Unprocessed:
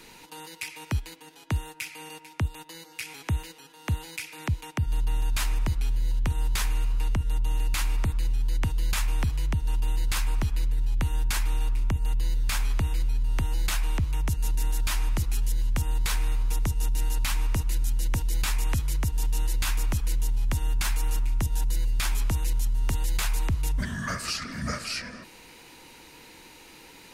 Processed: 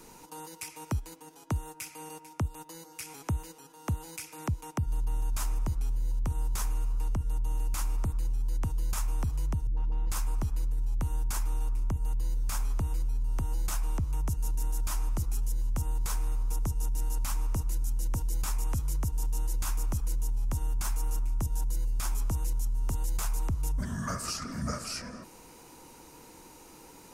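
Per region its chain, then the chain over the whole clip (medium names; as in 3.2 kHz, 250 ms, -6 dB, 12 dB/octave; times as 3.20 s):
9.67–10.10 s: distance through air 260 m + phase dispersion highs, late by 100 ms, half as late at 310 Hz
whole clip: high-order bell 2.7 kHz -10.5 dB; compression 2:1, threshold -29 dBFS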